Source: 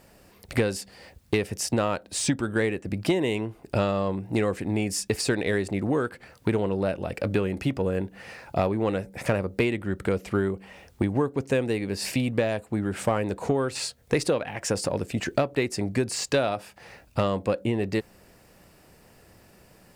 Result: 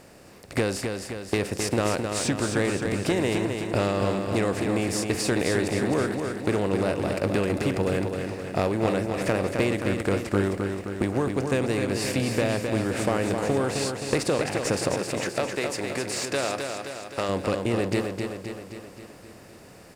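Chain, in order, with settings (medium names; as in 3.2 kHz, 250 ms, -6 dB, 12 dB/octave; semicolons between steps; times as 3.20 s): spectral levelling over time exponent 0.6; gate -28 dBFS, range -8 dB; 14.94–17.29 s: bass shelf 300 Hz -11.5 dB; feedback delay 262 ms, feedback 58%, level -5.5 dB; trim -4 dB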